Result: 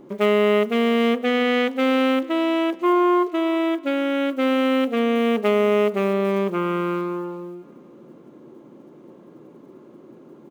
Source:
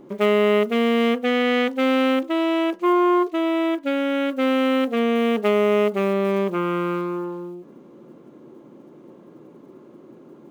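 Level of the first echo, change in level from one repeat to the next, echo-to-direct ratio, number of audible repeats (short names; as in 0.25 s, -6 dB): -23.0 dB, -8.0 dB, -22.0 dB, 2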